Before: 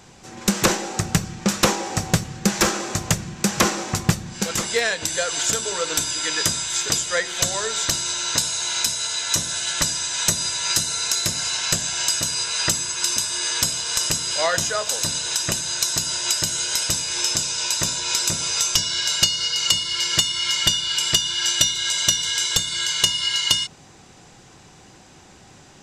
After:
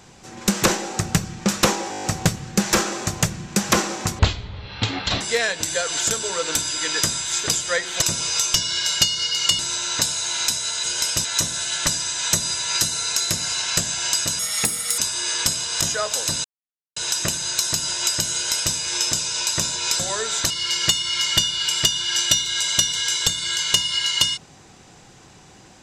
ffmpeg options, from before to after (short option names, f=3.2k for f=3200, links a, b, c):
-filter_complex "[0:a]asplit=19[a][b][c][d][e][f][g][h][i][j][k][l][m][n][o][p][q][r][s];[a]atrim=end=1.932[t];[b]atrim=start=1.908:end=1.932[u];[c]atrim=start=1.908:end=1.932[v];[d]atrim=start=1.908:end=1.932[w];[e]atrim=start=1.908:end=1.932[x];[f]atrim=start=1.908:end=1.932[y];[g]atrim=start=1.908:end=4.074[z];[h]atrim=start=4.07:end=4.63,asetpts=PTS-STARTPTS,asetrate=24255,aresample=44100[aa];[i]atrim=start=4.626:end=7.442[ab];[j]atrim=start=18.228:end=19.802[ac];[k]atrim=start=7.948:end=9.202[ad];[l]atrim=start=16.568:end=16.982[ae];[m]atrim=start=9.198:end=12.344[af];[n]atrim=start=12.34:end=13.15,asetpts=PTS-STARTPTS,asetrate=59976,aresample=44100,atrim=end_sample=26265,asetpts=PTS-STARTPTS[ag];[o]atrim=start=13.146:end=13.982[ah];[p]atrim=start=14.568:end=15.2,asetpts=PTS-STARTPTS,afade=t=out:st=0.628:d=0.004:c=hsin,apad=pad_dur=0.52[ai];[q]atrim=start=15.2:end=18.232,asetpts=PTS-STARTPTS,afade=t=in:d=0.004:c=hsin[aj];[r]atrim=start=7.438:end=7.952[ak];[s]atrim=start=19.798[al];[t][u]acrossfade=d=0.004:c1=hsin:c2=hsin[am];[am][v]acrossfade=d=0.004:c1=hsin:c2=hsin[an];[an][w]acrossfade=d=0.004:c1=hsin:c2=hsin[ao];[ao][x]acrossfade=d=0.004:c1=hsin:c2=hsin[ap];[ap][y]acrossfade=d=0.004:c1=hsin:c2=hsin[aq];[aq][z]acrossfade=d=0.004:c1=hsin:c2=hsin[ar];[ar][aa]acrossfade=d=0.004:c1=hsin:c2=hsin[as];[as][ab]acrossfade=d=0.004:c1=hsin:c2=hsin[at];[at][ac]acrossfade=d=0.004:c1=hsin:c2=hsin[au];[au][ad]acrossfade=d=0.004:c1=hsin:c2=hsin[av];[av][ae]acrossfade=d=0.004:c1=hsin:c2=hsin[aw];[aw][af]acrossfade=d=0.004:c1=hsin:c2=hsin[ax];[ax][ag]acrossfade=d=0.004:c1=hsin:c2=hsin[ay];[ay][ah]acrossfade=d=0.004:c1=hsin:c2=hsin[az];[ai][aj]concat=n=2:v=0:a=1[ba];[az][ba]acrossfade=d=0.004:c1=hsin:c2=hsin[bb];[bb][ak]acrossfade=d=0.004:c1=hsin:c2=hsin[bc];[bc][al]acrossfade=d=0.004:c1=hsin:c2=hsin"